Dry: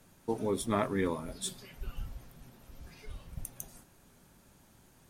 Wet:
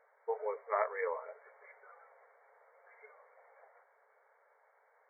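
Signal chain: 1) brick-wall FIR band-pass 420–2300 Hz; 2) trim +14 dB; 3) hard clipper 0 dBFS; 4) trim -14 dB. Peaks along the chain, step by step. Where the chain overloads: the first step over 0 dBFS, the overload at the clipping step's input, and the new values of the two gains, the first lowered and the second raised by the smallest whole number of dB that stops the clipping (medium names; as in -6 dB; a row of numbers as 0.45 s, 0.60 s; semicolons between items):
-17.0 dBFS, -3.0 dBFS, -3.0 dBFS, -17.0 dBFS; nothing clips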